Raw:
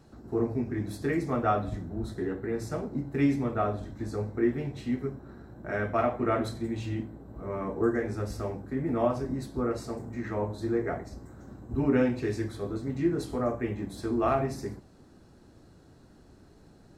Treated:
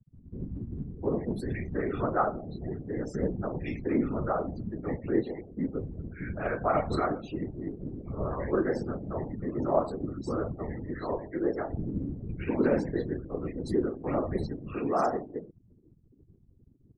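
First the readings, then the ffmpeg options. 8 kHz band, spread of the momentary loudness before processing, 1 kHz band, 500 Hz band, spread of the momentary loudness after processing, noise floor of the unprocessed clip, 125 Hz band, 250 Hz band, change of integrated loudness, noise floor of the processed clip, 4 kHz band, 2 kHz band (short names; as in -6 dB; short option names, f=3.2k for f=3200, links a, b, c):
n/a, 10 LU, 0.0 dB, 0.0 dB, 10 LU, -56 dBFS, -1.5 dB, -1.5 dB, -1.5 dB, -61 dBFS, -4.5 dB, -2.0 dB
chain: -filter_complex "[0:a]acrossover=split=210|2000[a][b][c];[c]adelay=460[d];[b]adelay=710[e];[a][e][d]amix=inputs=3:normalize=0,afftfilt=real='re*gte(hypot(re,im),0.00891)':imag='im*gte(hypot(re,im),0.00891)':win_size=1024:overlap=0.75,afftfilt=real='hypot(re,im)*cos(2*PI*random(0))':imag='hypot(re,im)*sin(2*PI*random(1))':win_size=512:overlap=0.75,volume=6.5dB"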